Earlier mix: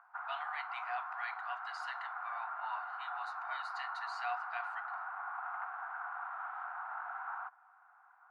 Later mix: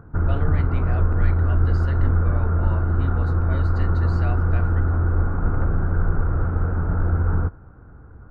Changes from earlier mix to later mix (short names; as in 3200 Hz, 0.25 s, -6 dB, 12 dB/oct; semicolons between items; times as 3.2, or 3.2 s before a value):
background: send on; master: remove rippled Chebyshev high-pass 720 Hz, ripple 3 dB